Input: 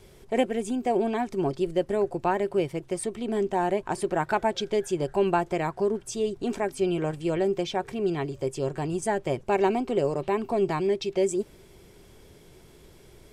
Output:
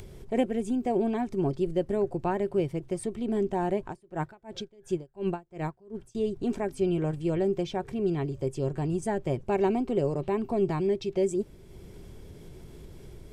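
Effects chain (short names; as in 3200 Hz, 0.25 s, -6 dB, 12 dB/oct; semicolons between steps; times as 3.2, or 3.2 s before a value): low shelf 360 Hz +11.5 dB; upward compressor, threshold -31 dBFS; 3.86–6.15 dB-linear tremolo 2.8 Hz, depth 30 dB; gain -7 dB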